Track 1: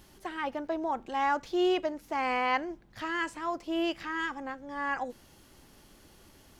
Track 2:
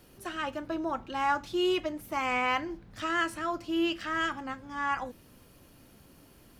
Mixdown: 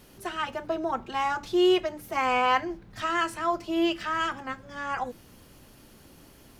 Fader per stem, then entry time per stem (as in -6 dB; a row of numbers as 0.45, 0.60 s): -0.5, +2.0 dB; 0.00, 0.00 s